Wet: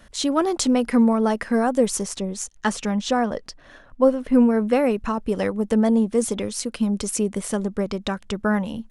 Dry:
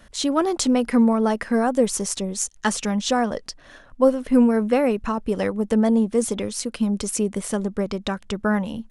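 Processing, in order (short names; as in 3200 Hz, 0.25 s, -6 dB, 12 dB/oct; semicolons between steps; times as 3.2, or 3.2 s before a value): 2.03–4.68 high shelf 4200 Hz -7 dB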